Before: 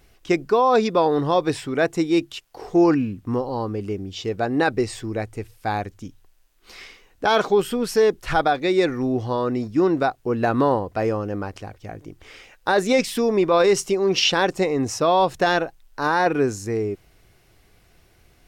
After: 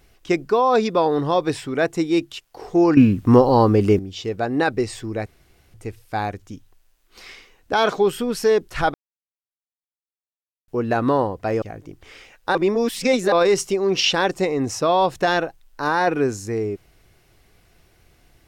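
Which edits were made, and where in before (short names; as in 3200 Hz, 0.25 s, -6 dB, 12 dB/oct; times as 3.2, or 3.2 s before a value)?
2.97–3.99 gain +11.5 dB
5.26 insert room tone 0.48 s
8.46–10.2 mute
11.14–11.81 cut
12.74–13.51 reverse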